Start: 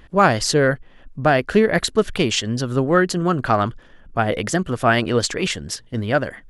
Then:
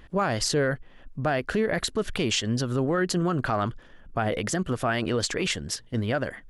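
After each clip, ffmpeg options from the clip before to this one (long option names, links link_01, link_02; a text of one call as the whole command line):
ffmpeg -i in.wav -af "alimiter=limit=-12.5dB:level=0:latency=1:release=55,volume=-3dB" out.wav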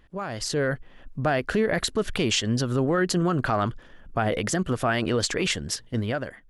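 ffmpeg -i in.wav -af "dynaudnorm=framelen=160:gausssize=7:maxgain=10dB,volume=-8dB" out.wav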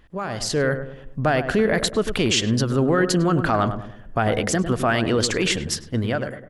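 ffmpeg -i in.wav -filter_complex "[0:a]asplit=2[link_01][link_02];[link_02]adelay=102,lowpass=frequency=1100:poles=1,volume=-8dB,asplit=2[link_03][link_04];[link_04]adelay=102,lowpass=frequency=1100:poles=1,volume=0.45,asplit=2[link_05][link_06];[link_06]adelay=102,lowpass=frequency=1100:poles=1,volume=0.45,asplit=2[link_07][link_08];[link_08]adelay=102,lowpass=frequency=1100:poles=1,volume=0.45,asplit=2[link_09][link_10];[link_10]adelay=102,lowpass=frequency=1100:poles=1,volume=0.45[link_11];[link_01][link_03][link_05][link_07][link_09][link_11]amix=inputs=6:normalize=0,volume=3.5dB" out.wav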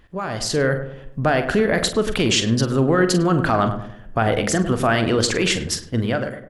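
ffmpeg -i in.wav -filter_complex "[0:a]asplit=2[link_01][link_02];[link_02]adelay=44,volume=-11dB[link_03];[link_01][link_03]amix=inputs=2:normalize=0,volume=1.5dB" out.wav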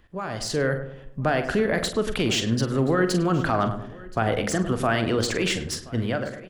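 ffmpeg -i in.wav -filter_complex "[0:a]acrossover=split=350|3400[link_01][link_02][link_03];[link_03]asoftclip=type=tanh:threshold=-20dB[link_04];[link_01][link_02][link_04]amix=inputs=3:normalize=0,aecho=1:1:1026:0.0794,volume=-4.5dB" out.wav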